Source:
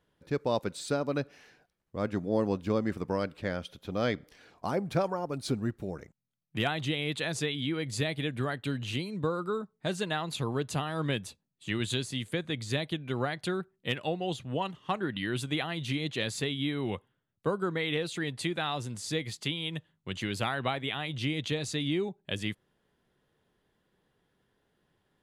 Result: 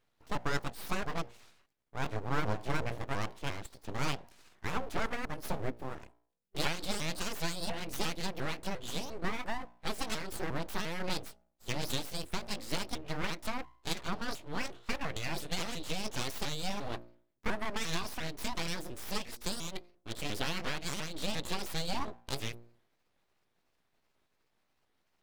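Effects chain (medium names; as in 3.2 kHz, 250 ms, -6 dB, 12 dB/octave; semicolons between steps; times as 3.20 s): sawtooth pitch modulation +6.5 st, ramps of 350 ms; de-hum 58.96 Hz, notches 9; full-wave rectifier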